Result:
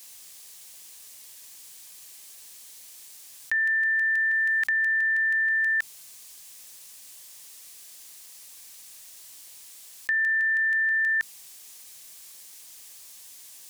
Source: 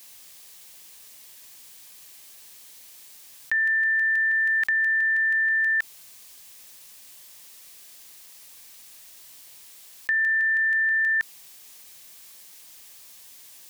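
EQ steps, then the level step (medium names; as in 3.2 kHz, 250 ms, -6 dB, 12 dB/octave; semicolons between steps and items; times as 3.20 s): peaking EQ 8.1 kHz +5.5 dB 1.6 oct; hum notches 50/100/150/200/250 Hz; -2.0 dB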